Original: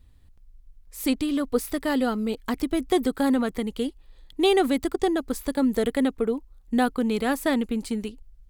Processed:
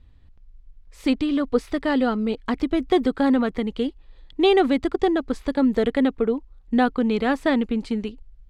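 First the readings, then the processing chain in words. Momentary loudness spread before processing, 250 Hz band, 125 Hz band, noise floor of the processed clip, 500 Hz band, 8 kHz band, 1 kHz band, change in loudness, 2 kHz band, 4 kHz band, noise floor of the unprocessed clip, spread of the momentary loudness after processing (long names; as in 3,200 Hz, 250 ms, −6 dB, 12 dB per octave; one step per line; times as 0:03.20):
8 LU, +3.0 dB, can't be measured, −51 dBFS, +3.0 dB, below −10 dB, +3.0 dB, +3.0 dB, +3.0 dB, +1.0 dB, −54 dBFS, 8 LU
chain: low-pass filter 3,900 Hz 12 dB per octave
level +3 dB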